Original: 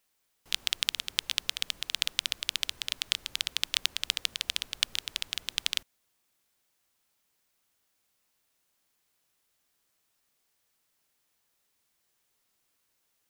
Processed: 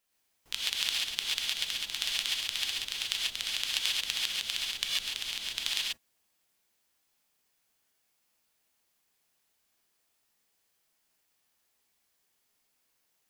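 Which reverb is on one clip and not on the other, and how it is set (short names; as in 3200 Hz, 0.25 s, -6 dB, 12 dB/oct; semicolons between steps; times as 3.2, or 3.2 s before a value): non-linear reverb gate 0.16 s rising, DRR -4.5 dB; gain -5.5 dB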